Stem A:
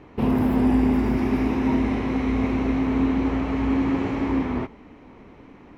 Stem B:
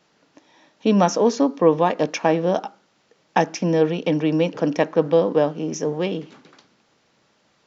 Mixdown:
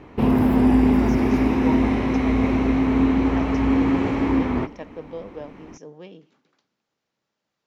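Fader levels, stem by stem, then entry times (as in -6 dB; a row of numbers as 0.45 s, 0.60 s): +3.0 dB, -18.0 dB; 0.00 s, 0.00 s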